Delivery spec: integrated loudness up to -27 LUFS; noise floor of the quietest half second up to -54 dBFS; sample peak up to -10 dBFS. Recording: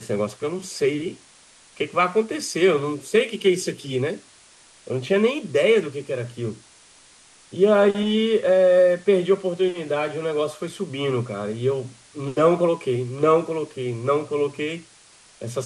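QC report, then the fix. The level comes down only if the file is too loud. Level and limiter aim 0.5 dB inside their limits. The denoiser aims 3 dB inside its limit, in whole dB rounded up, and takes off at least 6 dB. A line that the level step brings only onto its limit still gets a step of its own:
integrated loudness -22.0 LUFS: fail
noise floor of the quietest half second -52 dBFS: fail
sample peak -6.0 dBFS: fail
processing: trim -5.5 dB

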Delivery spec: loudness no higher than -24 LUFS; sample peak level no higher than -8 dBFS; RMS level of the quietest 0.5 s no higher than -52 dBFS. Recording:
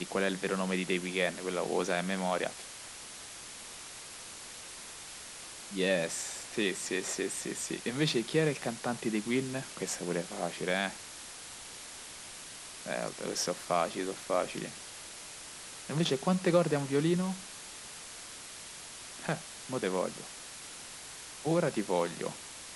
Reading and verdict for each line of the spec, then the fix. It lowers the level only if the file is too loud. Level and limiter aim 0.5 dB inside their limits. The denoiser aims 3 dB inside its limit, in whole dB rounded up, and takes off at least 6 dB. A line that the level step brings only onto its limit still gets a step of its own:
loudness -34.5 LUFS: pass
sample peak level -14.0 dBFS: pass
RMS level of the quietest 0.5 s -46 dBFS: fail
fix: noise reduction 9 dB, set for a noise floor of -46 dBFS

